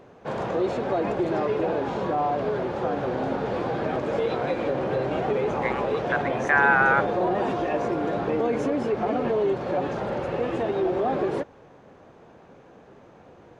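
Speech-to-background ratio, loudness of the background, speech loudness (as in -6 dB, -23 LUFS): 3.5 dB, -26.5 LUFS, -23.0 LUFS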